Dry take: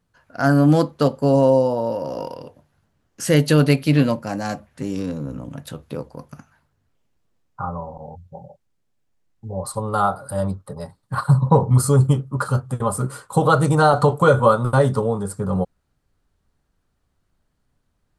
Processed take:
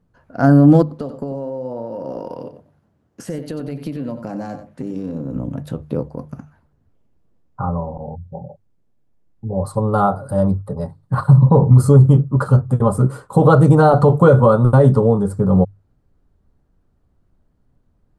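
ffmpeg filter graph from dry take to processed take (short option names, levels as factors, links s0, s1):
-filter_complex "[0:a]asettb=1/sr,asplit=3[s0][s1][s2];[s0]atrim=end=0.824[s3];[s1]atrim=start=0.82:end=5.36,asetpts=PTS-STARTPTS,afade=t=in:d=0.004:c=qsin,afade=t=out:st=4.536:d=0.004:c=qsin,highpass=f=150:p=1,acompressor=threshold=0.0355:ratio=12:attack=3.2:release=140:knee=1:detection=peak,aecho=1:1:93:0.299,atrim=end_sample=200214[s4];[s2]atrim=start=5.356[s5];[s3][s4]acrossfade=d=0.004:c1=hsin:c2=qsin[s6];[s6][s5]acrossfade=d=0.004:c1=qsin:c2=hsin,tiltshelf=f=1100:g=8.5,bandreject=f=50:t=h:w=6,bandreject=f=100:t=h:w=6,bandreject=f=150:t=h:w=6,alimiter=level_in=1.26:limit=0.891:release=50:level=0:latency=1,volume=0.891"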